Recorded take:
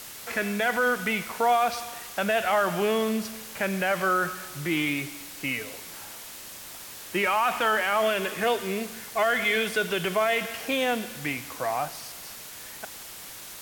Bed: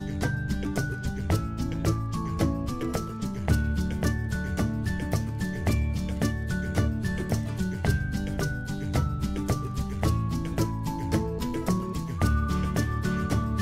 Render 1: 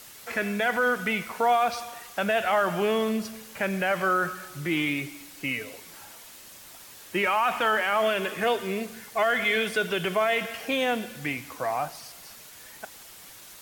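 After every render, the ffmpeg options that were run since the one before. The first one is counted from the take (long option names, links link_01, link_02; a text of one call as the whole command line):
ffmpeg -i in.wav -af "afftdn=noise_reduction=6:noise_floor=-42" out.wav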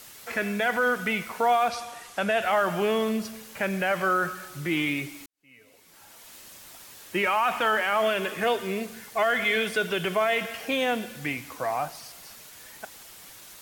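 ffmpeg -i in.wav -filter_complex "[0:a]asettb=1/sr,asplit=3[link_01][link_02][link_03];[link_01]atrim=end=1.684[link_04];[link_02]atrim=start=1.68:end=2.42,asetpts=PTS-STARTPTS,afade=type=in:duration=0.004:curve=qsin,afade=type=out:start_time=0.736:duration=0.004:curve=qsin,lowpass=frequency=12000:width=0.5412,lowpass=frequency=12000:width=1.3066[link_05];[link_03]atrim=start=2.416[link_06];[link_04][link_05]acrossfade=duration=0.004:curve1=hsin:curve2=qsin[link_07];[link_07][link_06]acrossfade=duration=0.004:curve1=qsin:curve2=hsin,asplit=2[link_08][link_09];[link_08]atrim=end=5.26,asetpts=PTS-STARTPTS,afade=type=out:start_time=5.256:duration=0.004:curve=hsin[link_10];[link_09]atrim=start=5.26,asetpts=PTS-STARTPTS,afade=type=in:duration=1.09:curve=qua[link_11];[link_10][link_11]concat=n=2:v=0:a=1" out.wav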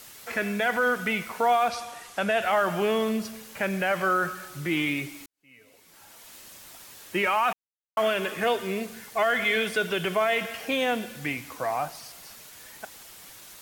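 ffmpeg -i in.wav -filter_complex "[0:a]asplit=3[link_01][link_02][link_03];[link_01]atrim=end=7.53,asetpts=PTS-STARTPTS,afade=type=out:start_time=7.526:duration=0.004:curve=hsin[link_04];[link_02]atrim=start=7.53:end=7.97,asetpts=PTS-STARTPTS,volume=0[link_05];[link_03]atrim=start=7.97,asetpts=PTS-STARTPTS,afade=type=in:duration=0.004:curve=hsin[link_06];[link_04][link_05][link_06]concat=n=3:v=0:a=1" out.wav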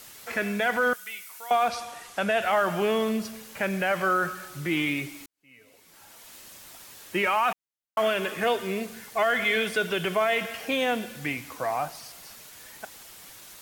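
ffmpeg -i in.wav -filter_complex "[0:a]asettb=1/sr,asplit=3[link_01][link_02][link_03];[link_01]atrim=end=0.934[link_04];[link_02]atrim=start=0.93:end=1.51,asetpts=PTS-STARTPTS,afade=type=in:duration=0.004:curve=qsin,afade=type=out:start_time=0.576:duration=0.004:curve=qsin,aderivative[link_05];[link_03]atrim=start=1.506[link_06];[link_04][link_05]acrossfade=duration=0.004:curve1=hsin:curve2=qsin[link_07];[link_07][link_06]acrossfade=duration=0.004:curve1=qsin:curve2=hsin" out.wav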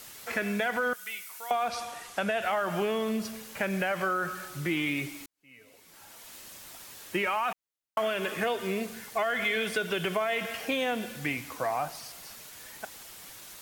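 ffmpeg -i in.wav -af "acompressor=threshold=-25dB:ratio=6" out.wav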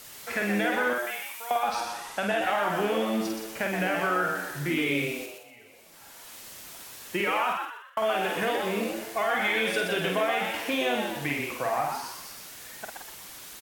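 ffmpeg -i in.wav -filter_complex "[0:a]asplit=2[link_01][link_02];[link_02]adelay=49,volume=-4dB[link_03];[link_01][link_03]amix=inputs=2:normalize=0,asplit=6[link_04][link_05][link_06][link_07][link_08][link_09];[link_05]adelay=123,afreqshift=110,volume=-5dB[link_10];[link_06]adelay=246,afreqshift=220,volume=-13.4dB[link_11];[link_07]adelay=369,afreqshift=330,volume=-21.8dB[link_12];[link_08]adelay=492,afreqshift=440,volume=-30.2dB[link_13];[link_09]adelay=615,afreqshift=550,volume=-38.6dB[link_14];[link_04][link_10][link_11][link_12][link_13][link_14]amix=inputs=6:normalize=0" out.wav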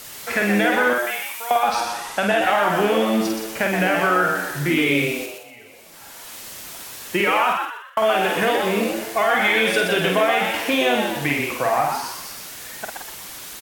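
ffmpeg -i in.wav -af "volume=8dB" out.wav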